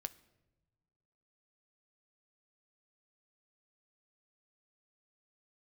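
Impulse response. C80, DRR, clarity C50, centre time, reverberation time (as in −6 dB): 21.5 dB, 11.0 dB, 19.0 dB, 3 ms, non-exponential decay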